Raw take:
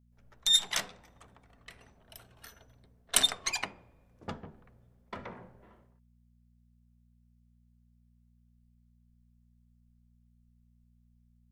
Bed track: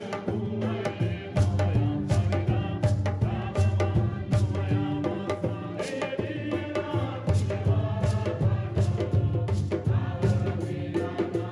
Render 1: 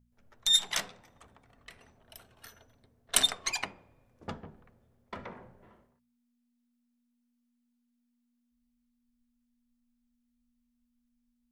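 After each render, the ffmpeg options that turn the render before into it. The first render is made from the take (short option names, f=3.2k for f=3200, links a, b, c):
-af "bandreject=f=60:t=h:w=4,bandreject=f=120:t=h:w=4,bandreject=f=180:t=h:w=4"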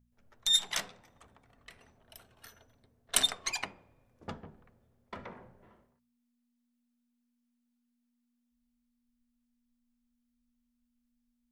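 -af "volume=-2dB"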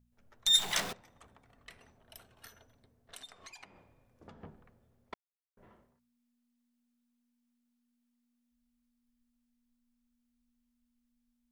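-filter_complex "[0:a]asettb=1/sr,asplit=3[a][b][c];[a]atrim=end=0.474[d];[b]atrim=start=0.47:end=0.93,asetpts=PTS-STARTPTS,afade=t=in:d=0.004:c=qsin,afade=t=out:st=0.456:d=0.004:c=qsin,aeval=exprs='val(0)+0.5*0.0168*sgn(val(0))':c=same[e];[c]atrim=start=0.926[f];[d][e]acrossfade=d=0.004:c1=hsin:c2=qsin[g];[g][f]acrossfade=d=0.004:c1=qsin:c2=hsin,asettb=1/sr,asplit=3[h][i][j];[h]atrim=end=2.474[k];[i]atrim=start=2.47:end=4.41,asetpts=PTS-STARTPTS,afade=t=in:d=0.004:c=qsin,afade=t=out:st=1.936:d=0.004:c=qsin,acompressor=threshold=-51dB:ratio=4:attack=3.2:release=140:knee=1:detection=peak[l];[j]atrim=start=4.406[m];[k][l]acrossfade=d=0.004:c1=hsin:c2=qsin[n];[n][m]acrossfade=d=0.004:c1=qsin:c2=hsin,asplit=3[o][p][q];[o]atrim=end=5.14,asetpts=PTS-STARTPTS,afade=t=out:st=5.136:d=0.004:c=hsin[r];[p]atrim=start=5.14:end=5.57,asetpts=PTS-STARTPTS,volume=0[s];[q]atrim=start=5.57,asetpts=PTS-STARTPTS,afade=t=in:d=0.004:c=hsin[t];[r][s][t]concat=n=3:v=0:a=1"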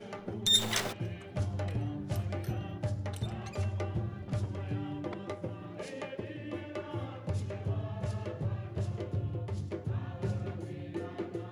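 -filter_complex "[1:a]volume=-10dB[a];[0:a][a]amix=inputs=2:normalize=0"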